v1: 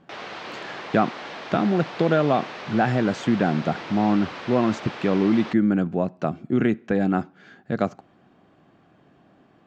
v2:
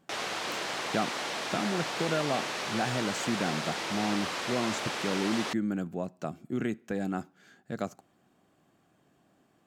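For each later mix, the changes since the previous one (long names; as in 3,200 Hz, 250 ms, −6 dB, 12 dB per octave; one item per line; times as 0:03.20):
speech −11.0 dB
master: remove high-frequency loss of the air 200 metres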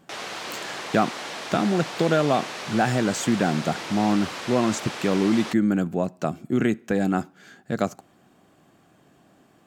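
speech +9.5 dB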